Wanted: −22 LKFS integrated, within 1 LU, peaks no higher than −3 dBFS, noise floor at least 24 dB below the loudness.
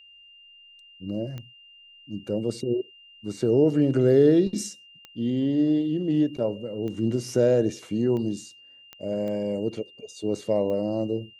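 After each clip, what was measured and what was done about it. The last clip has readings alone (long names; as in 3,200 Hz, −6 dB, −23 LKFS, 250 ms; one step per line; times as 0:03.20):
number of clicks 7; interfering tone 2,800 Hz; level of the tone −49 dBFS; integrated loudness −25.0 LKFS; sample peak −8.5 dBFS; target loudness −22.0 LKFS
→ click removal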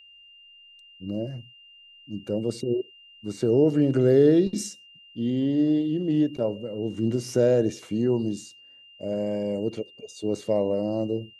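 number of clicks 0; interfering tone 2,800 Hz; level of the tone −49 dBFS
→ notch filter 2,800 Hz, Q 30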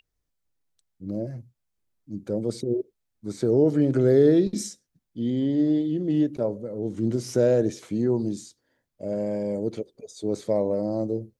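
interfering tone none found; integrated loudness −25.0 LKFS; sample peak −8.5 dBFS; target loudness −22.0 LKFS
→ level +3 dB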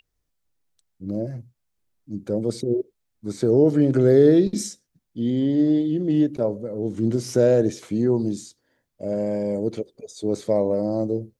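integrated loudness −22.0 LKFS; sample peak −5.5 dBFS; background noise floor −76 dBFS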